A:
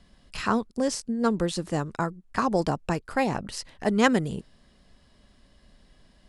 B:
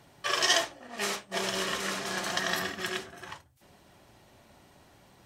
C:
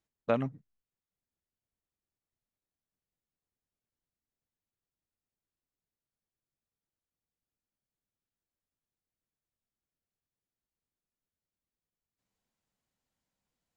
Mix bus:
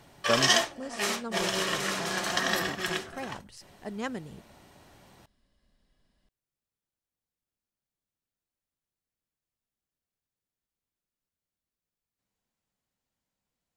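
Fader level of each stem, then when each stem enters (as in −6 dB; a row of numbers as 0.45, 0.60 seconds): −14.0, +2.0, +0.5 decibels; 0.00, 0.00, 0.00 seconds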